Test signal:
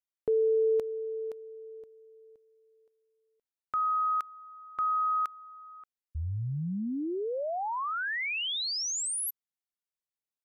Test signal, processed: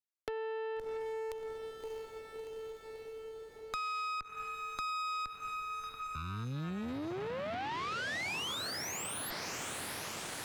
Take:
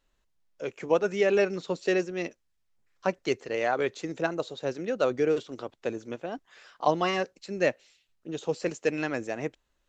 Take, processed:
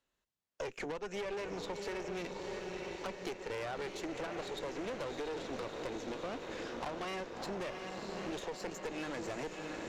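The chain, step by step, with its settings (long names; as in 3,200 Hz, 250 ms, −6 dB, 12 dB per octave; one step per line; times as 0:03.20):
noise gate −57 dBFS, range −27 dB
high-pass filter 120 Hz 6 dB per octave
downward compressor 16 to 1, threshold −32 dBFS
asymmetric clip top −36.5 dBFS
feedback delay with all-pass diffusion 663 ms, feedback 65%, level −7 dB
tube saturation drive 39 dB, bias 0.7
multiband upward and downward compressor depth 70%
level +3.5 dB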